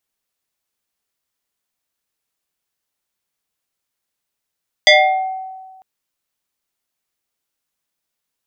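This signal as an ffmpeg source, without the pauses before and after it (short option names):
-f lavfi -i "aevalsrc='0.631*pow(10,-3*t/1.49)*sin(2*PI*757*t+3.1*pow(10,-3*t/0.86)*sin(2*PI*1.8*757*t))':d=0.95:s=44100"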